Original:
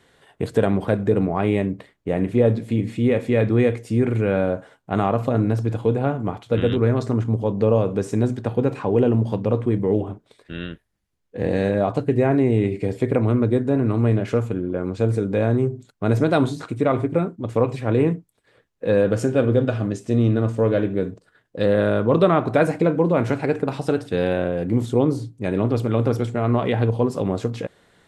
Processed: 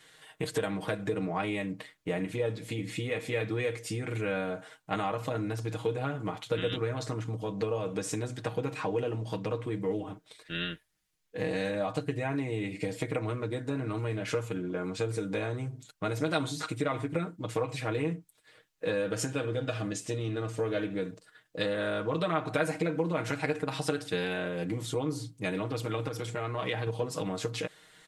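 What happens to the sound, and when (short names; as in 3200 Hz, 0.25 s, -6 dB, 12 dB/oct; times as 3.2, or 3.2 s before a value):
26.08–26.87 compressor 2:1, threshold -25 dBFS
whole clip: compressor 4:1, threshold -22 dBFS; tilt shelf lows -7 dB, about 1200 Hz; comb 6.4 ms, depth 79%; gain -3 dB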